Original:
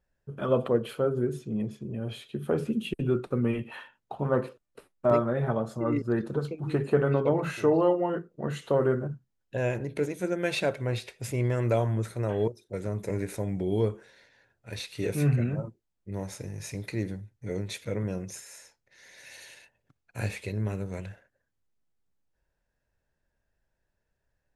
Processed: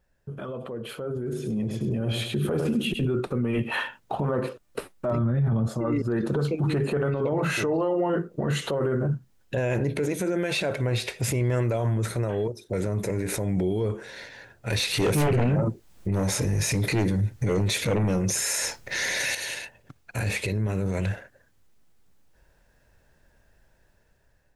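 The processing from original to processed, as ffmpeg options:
-filter_complex "[0:a]asettb=1/sr,asplit=3[a][b][c];[a]atrim=end=1.154[d];[b]atrim=start=1.15:end=3.05,asetpts=PTS-STARTPTS,afade=t=in:d=0.004:c=qsin,afade=t=out:st=1.896:d=0.004:c=qsin,aecho=1:1:102|204|306:0.355|0.0923|0.024,atrim=end_sample=83790[e];[c]atrim=start=3.046[f];[d][e]acrossfade=d=0.004:c1=hsin:c2=qsin[g];[g][f]acrossfade=d=0.004:c1=qsin:c2=hsin,asplit=3[h][i][j];[h]afade=t=out:st=5.12:d=0.02[k];[i]asubboost=boost=9:cutoff=180,afade=t=in:st=5.12:d=0.02,afade=t=out:st=5.66:d=0.02[l];[j]afade=t=in:st=5.66:d=0.02[m];[k][l][m]amix=inputs=3:normalize=0,asettb=1/sr,asplit=3[n][o][p];[n]atrim=end=14.704[q];[o]atrim=start=14.7:end=19.35,asetpts=PTS-STARTPTS,afade=t=in:d=0.004:c=qsin,afade=t=out:st=4.646:d=0.004:c=qsin,aeval=exprs='0.168*sin(PI/2*2.82*val(0)/0.168)':c=same[r];[p]atrim=start=19.346[s];[q][r]acrossfade=d=0.004:c1=hsin:c2=qsin[t];[t][s]acrossfade=d=0.004:c1=qsin:c2=hsin,acompressor=threshold=-40dB:ratio=2,alimiter=level_in=11.5dB:limit=-24dB:level=0:latency=1:release=27,volume=-11.5dB,dynaudnorm=f=570:g=5:m=10dB,volume=7.5dB"

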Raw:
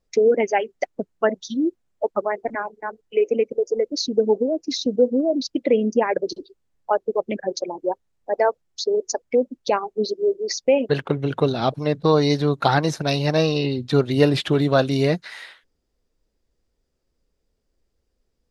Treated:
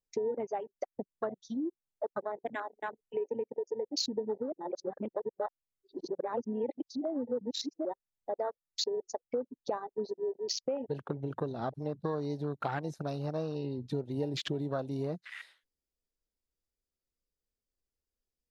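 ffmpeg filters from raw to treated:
-filter_complex "[0:a]asettb=1/sr,asplit=3[a][b][c];[a]atrim=end=9.054[d];[b]atrim=start=9.05:end=10.13,asetpts=PTS-STARTPTS,afade=t=in:d=0.004:c=qsin,afade=t=out:st=1.076:d=0.004:c=qsin,equalizer=f=700:t=o:w=1.8:g=3[e];[c]atrim=start=10.126[f];[d][e]acrossfade=d=0.004:c1=hsin:c2=qsin[g];[g][f]acrossfade=d=0.004:c1=qsin:c2=hsin,asplit=3[h][i][j];[h]atrim=end=4.522[k];[i]atrim=start=4.518:end=7.852,asetpts=PTS-STARTPTS,areverse[l];[j]atrim=start=7.848[m];[k][l]acrossfade=d=0.004:c1=hsin:c2=hsin[n];[n][m]acrossfade=d=0.004:c1=hsin:c2=hsin,acompressor=threshold=-31dB:ratio=3,afwtdn=0.0141,highshelf=f=4.8k:g=11.5,volume=-4dB"

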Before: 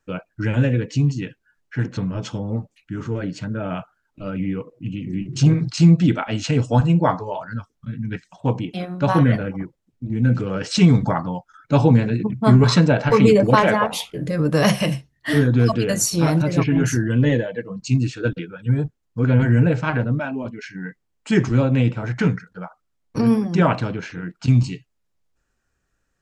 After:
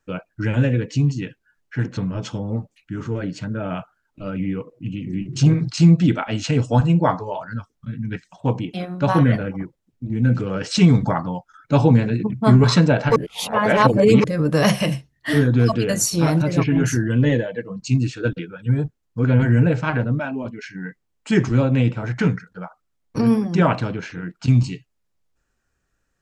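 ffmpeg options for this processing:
-filter_complex "[0:a]asplit=3[a][b][c];[a]atrim=end=13.162[d];[b]atrim=start=13.158:end=14.242,asetpts=PTS-STARTPTS,areverse[e];[c]atrim=start=14.238[f];[d][e]acrossfade=d=0.004:c1=hsin:c2=hsin[g];[g][f]acrossfade=d=0.004:c1=hsin:c2=hsin"

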